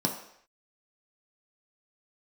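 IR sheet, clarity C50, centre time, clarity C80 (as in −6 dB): 7.5 dB, 23 ms, 10.0 dB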